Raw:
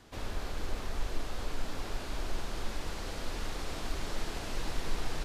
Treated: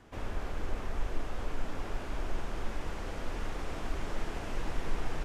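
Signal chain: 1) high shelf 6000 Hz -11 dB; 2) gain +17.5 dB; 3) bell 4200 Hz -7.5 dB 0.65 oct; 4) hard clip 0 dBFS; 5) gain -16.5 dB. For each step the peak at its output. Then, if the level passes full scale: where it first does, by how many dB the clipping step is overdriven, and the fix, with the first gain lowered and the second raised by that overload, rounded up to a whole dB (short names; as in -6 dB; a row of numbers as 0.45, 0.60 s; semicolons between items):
-19.5, -2.0, -2.0, -2.0, -18.5 dBFS; no overload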